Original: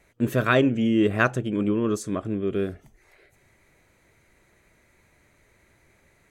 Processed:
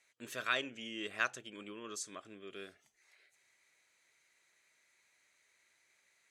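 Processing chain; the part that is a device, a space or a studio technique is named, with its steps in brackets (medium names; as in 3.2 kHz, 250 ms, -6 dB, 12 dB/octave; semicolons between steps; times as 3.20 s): piezo pickup straight into a mixer (low-pass 5.7 kHz 12 dB/octave; differentiator); trim +2 dB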